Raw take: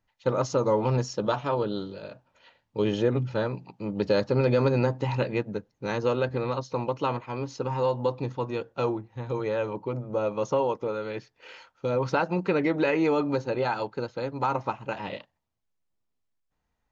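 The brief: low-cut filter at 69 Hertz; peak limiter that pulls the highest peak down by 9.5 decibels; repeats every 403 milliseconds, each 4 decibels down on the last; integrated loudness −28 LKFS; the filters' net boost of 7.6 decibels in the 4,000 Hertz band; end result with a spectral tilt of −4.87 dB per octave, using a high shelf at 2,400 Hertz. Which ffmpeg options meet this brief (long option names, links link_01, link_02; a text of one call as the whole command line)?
ffmpeg -i in.wav -af "highpass=69,highshelf=frequency=2400:gain=6,equalizer=frequency=4000:width_type=o:gain=4,alimiter=limit=-19.5dB:level=0:latency=1,aecho=1:1:403|806|1209|1612|2015|2418|2821|3224|3627:0.631|0.398|0.25|0.158|0.0994|0.0626|0.0394|0.0249|0.0157,volume=1dB" out.wav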